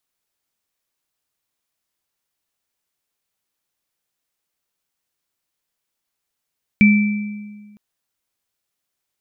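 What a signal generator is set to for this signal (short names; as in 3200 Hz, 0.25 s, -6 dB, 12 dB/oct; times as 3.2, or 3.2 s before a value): sine partials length 0.96 s, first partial 208 Hz, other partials 2330 Hz, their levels -5.5 dB, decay 1.57 s, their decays 1.07 s, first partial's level -7 dB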